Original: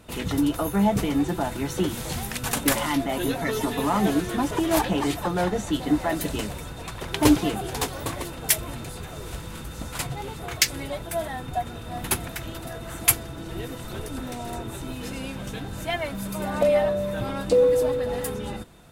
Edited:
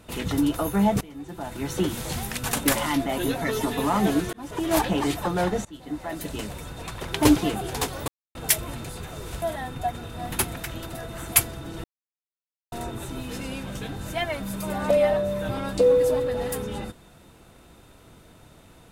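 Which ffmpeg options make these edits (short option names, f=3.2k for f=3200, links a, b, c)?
-filter_complex "[0:a]asplit=9[a][b][c][d][e][f][g][h][i];[a]atrim=end=1.01,asetpts=PTS-STARTPTS,afade=t=out:st=1.006:d=0.004:c=hsin:silence=0.112202[j];[b]atrim=start=1.01:end=4.33,asetpts=PTS-STARTPTS,afade=t=in:d=0.71:c=qua:silence=0.112202,afade=t=out:st=3.316:d=0.004:c=hsin[k];[c]atrim=start=4.33:end=5.65,asetpts=PTS-STARTPTS,afade=t=in:d=0.43,afade=t=out:st=1.316:d=0.004:c=hsin:silence=0.0794328[l];[d]atrim=start=5.65:end=8.08,asetpts=PTS-STARTPTS,afade=t=in:d=1.17:silence=0.0794328,afade=t=out:st=2.426:d=0.004:c=hsin[m];[e]atrim=start=8.08:end=8.35,asetpts=PTS-STARTPTS,volume=0[n];[f]atrim=start=8.35:end=9.422,asetpts=PTS-STARTPTS,afade=t=in:d=0.004:c=hsin[o];[g]atrim=start=11.138:end=13.56,asetpts=PTS-STARTPTS,afade=t=out:st=2.418:d=0.004:c=hsin[p];[h]atrim=start=13.56:end=14.44,asetpts=PTS-STARTPTS,volume=0[q];[i]atrim=start=14.44,asetpts=PTS-STARTPTS,afade=t=in:d=0.004:c=hsin[r];[j][k][l][m][n][o]concat=n=6:v=0:a=1[s];[p][q][r]concat=n=3:v=0:a=1[t];[s][t]acrossfade=d=0.004:c1=hsin:c2=hsin"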